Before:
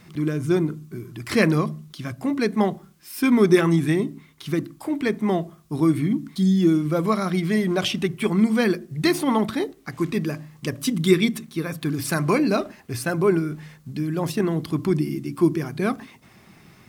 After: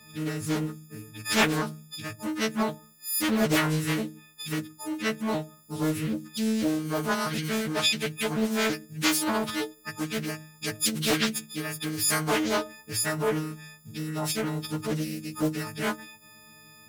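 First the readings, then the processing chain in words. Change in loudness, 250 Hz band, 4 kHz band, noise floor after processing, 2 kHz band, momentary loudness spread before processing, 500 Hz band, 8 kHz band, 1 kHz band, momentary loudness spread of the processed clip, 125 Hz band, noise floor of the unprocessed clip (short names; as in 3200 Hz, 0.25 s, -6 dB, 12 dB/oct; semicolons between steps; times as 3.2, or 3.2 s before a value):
-5.5 dB, -8.0 dB, +2.5 dB, -53 dBFS, -1.0 dB, 12 LU, -7.5 dB, +6.0 dB, -2.5 dB, 11 LU, -8.0 dB, -52 dBFS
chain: frequency quantiser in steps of 6 st; Doppler distortion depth 0.69 ms; gain -7.5 dB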